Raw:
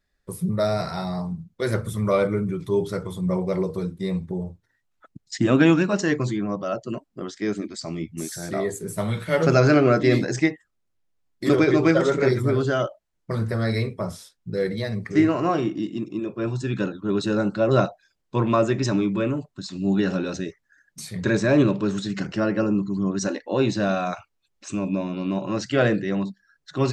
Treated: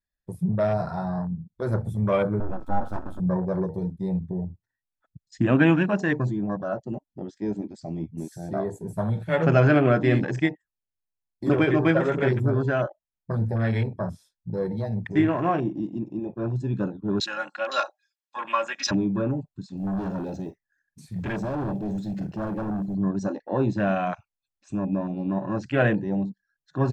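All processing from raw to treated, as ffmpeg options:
-filter_complex "[0:a]asettb=1/sr,asplit=3[s0][s1][s2];[s0]atrim=end=2.404[s3];[s1]atrim=start=2.4:end=3.2,asetpts=PTS-STARTPTS,afade=t=in:d=0.004:c=qsin,afade=t=out:st=0.796:d=0.004:c=qsin,aeval=exprs='abs(val(0))':c=same,aeval=exprs='val(0)+0.00891*sin(2*PI*1300*n/s)':c=same[s4];[s2]atrim=start=3.196[s5];[s3][s4]acrossfade=d=0.004:c1=hsin:c2=qsin[s6];[s6][s5]acrossfade=d=0.004:c1=qsin:c2=hsin,asettb=1/sr,asplit=3[s7][s8][s9];[s7]atrim=end=17.204[s10];[s8]atrim=start=17.2:end=18.91,asetpts=PTS-STARTPTS,afade=t=in:d=0.004:c=qsin,afade=t=out:st=1.706:d=0.004:c=qsin,highpass=870,tiltshelf=f=1200:g=-5,aecho=1:1:3.6:0.94,atrim=end_sample=75411[s11];[s9]atrim=start=18.906[s12];[s10][s11]acrossfade=d=0.004:c1=hsin:c2=qsin[s13];[s13][s12]acrossfade=d=0.004:c1=qsin:c2=hsin,asettb=1/sr,asplit=3[s14][s15][s16];[s14]atrim=end=19.774[s17];[s15]atrim=start=19.77:end=22.95,asetpts=PTS-STARTPTS,afade=t=in:d=0.004:c=qsin,afade=t=out:st=3.176:d=0.004:c=qsin,volume=17.8,asoftclip=hard,volume=0.0562,acrusher=bits=6:mode=log:mix=0:aa=0.000001,asplit=2[s18][s19];[s19]adelay=47,volume=0.2[s20];[s18][s20]amix=inputs=2:normalize=0,atrim=end_sample=140238[s21];[s16]atrim=start=22.946[s22];[s17][s21]acrossfade=d=0.004:c1=hsin:c2=qsin[s23];[s23][s22]acrossfade=d=0.004:c1=qsin:c2=hsin,afwtdn=0.0251,aecho=1:1:1.2:0.33,volume=0.891"

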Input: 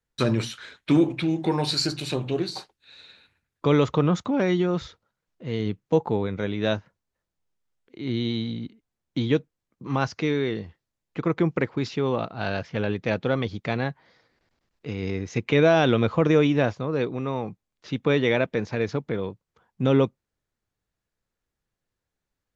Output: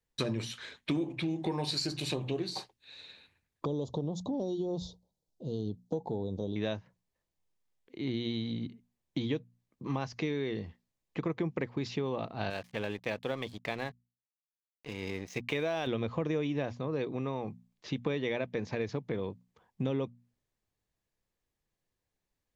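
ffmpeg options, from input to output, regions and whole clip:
-filter_complex "[0:a]asettb=1/sr,asplit=3[s0][s1][s2];[s0]atrim=end=3.654[s3];[s1]atrim=start=3.65:end=6.56,asetpts=PTS-STARTPTS,afade=t=in:d=0.004:c=qsin,afade=t=out:st=2.906:d=0.004:c=qsin,asuperstop=centerf=1800:order=8:qfactor=0.64,acompressor=threshold=0.0251:ratio=1.5:attack=3.2:release=140:knee=1:detection=peak[s4];[s2]atrim=start=6.556[s5];[s3][s4]acrossfade=d=0.004:c1=hsin:c2=qsin[s6];[s6][s5]acrossfade=d=0.004:c1=qsin:c2=hsin,asettb=1/sr,asplit=3[s7][s8][s9];[s7]atrim=end=12.504[s10];[s8]atrim=start=12.5:end=15.87,asetpts=PTS-STARTPTS,afade=t=in:d=0.004:c=qsin,afade=t=out:st=3.366:d=0.004:c=qsin,lowshelf=f=400:g=-9,aeval=exprs='sgn(val(0))*max(abs(val(0))-0.00473,0)':c=same[s11];[s9]atrim=start=15.866[s12];[s10][s11]acrossfade=d=0.004:c1=hsin:c2=qsin[s13];[s13][s12]acrossfade=d=0.004:c1=qsin:c2=hsin,equalizer=f=1400:w=6.2:g=-9,bandreject=f=60:t=h:w=6,bandreject=f=120:t=h:w=6,bandreject=f=180:t=h:w=6,bandreject=f=240:t=h:w=6,acompressor=threshold=0.0355:ratio=4,volume=0.841"

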